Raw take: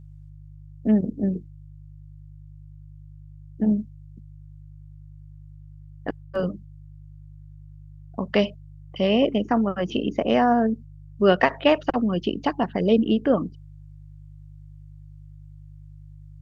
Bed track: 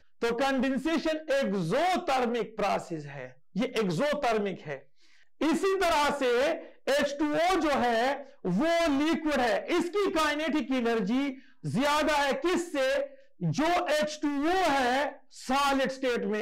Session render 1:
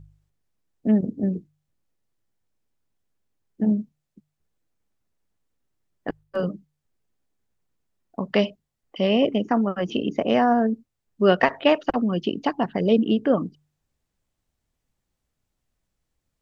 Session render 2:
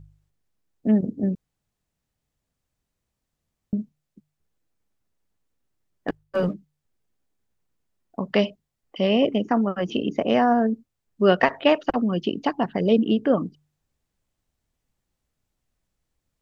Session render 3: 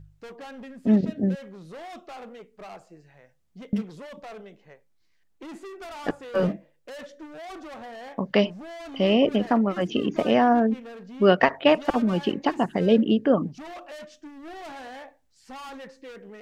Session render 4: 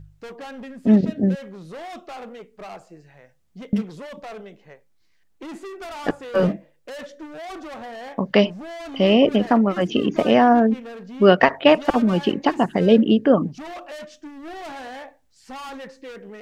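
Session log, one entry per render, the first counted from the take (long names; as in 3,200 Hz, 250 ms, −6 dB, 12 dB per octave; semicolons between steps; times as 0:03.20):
hum removal 50 Hz, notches 3
0:01.35–0:03.73: fill with room tone; 0:06.08–0:06.54: leveller curve on the samples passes 1
mix in bed track −14 dB
level +4.5 dB; brickwall limiter −1 dBFS, peak gain reduction 0.5 dB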